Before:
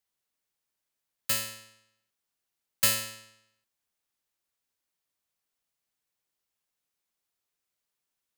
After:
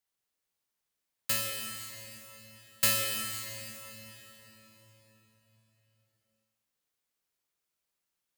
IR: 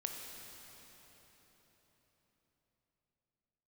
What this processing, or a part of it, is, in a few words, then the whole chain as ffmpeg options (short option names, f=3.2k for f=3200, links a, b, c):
cathedral: -filter_complex "[1:a]atrim=start_sample=2205[a];[0:a][a]afir=irnorm=-1:irlink=0"